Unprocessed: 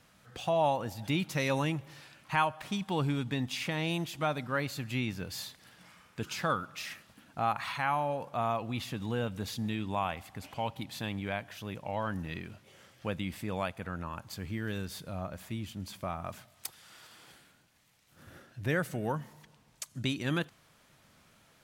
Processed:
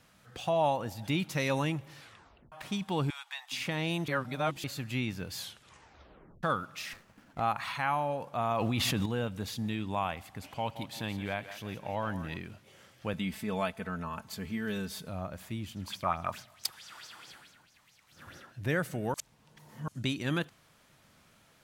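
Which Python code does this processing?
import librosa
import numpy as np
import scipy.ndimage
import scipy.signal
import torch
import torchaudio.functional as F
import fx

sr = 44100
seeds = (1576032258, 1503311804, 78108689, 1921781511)

y = fx.steep_highpass(x, sr, hz=750.0, slope=48, at=(3.1, 3.52))
y = fx.running_max(y, sr, window=9, at=(6.93, 7.4))
y = fx.env_flatten(y, sr, amount_pct=100, at=(8.51, 9.06))
y = fx.echo_thinned(y, sr, ms=171, feedback_pct=48, hz=420.0, wet_db=-11, at=(10.5, 12.37))
y = fx.comb(y, sr, ms=4.6, depth=0.65, at=(13.13, 15.09))
y = fx.bell_lfo(y, sr, hz=4.6, low_hz=900.0, high_hz=6100.0, db=14, at=(15.75, 18.5), fade=0.02)
y = fx.edit(y, sr, fx.tape_stop(start_s=2.0, length_s=0.52),
    fx.reverse_span(start_s=4.08, length_s=0.56),
    fx.tape_stop(start_s=5.36, length_s=1.07),
    fx.reverse_span(start_s=19.14, length_s=0.74), tone=tone)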